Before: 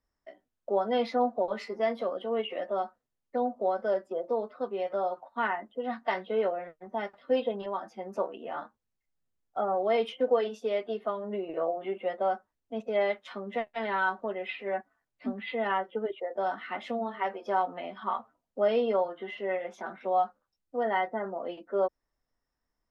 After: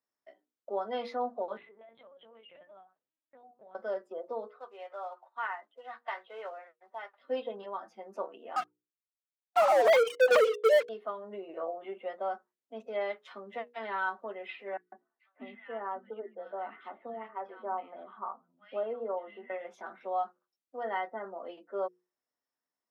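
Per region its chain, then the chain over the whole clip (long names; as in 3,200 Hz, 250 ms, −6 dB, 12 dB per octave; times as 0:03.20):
0:01.57–0:03.75: dynamic equaliser 390 Hz, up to −6 dB, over −41 dBFS, Q 0.81 + downward compressor 10 to 1, threshold −44 dBFS + linear-prediction vocoder at 8 kHz pitch kept
0:04.50–0:07.20: floating-point word with a short mantissa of 4 bits + band-pass filter 770–3,600 Hz
0:08.56–0:10.89: three sine waves on the formant tracks + high-pass filter 250 Hz 24 dB per octave + leveller curve on the samples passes 5
0:14.77–0:19.50: high-frequency loss of the air 480 metres + three-band delay without the direct sound highs, mids, lows 150/690 ms, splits 170/1,700 Hz
whole clip: high-pass filter 260 Hz 12 dB per octave; mains-hum notches 60/120/180/240/300/360/420/480 Hz; dynamic equaliser 1,200 Hz, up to +4 dB, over −47 dBFS, Q 2.1; level −6.5 dB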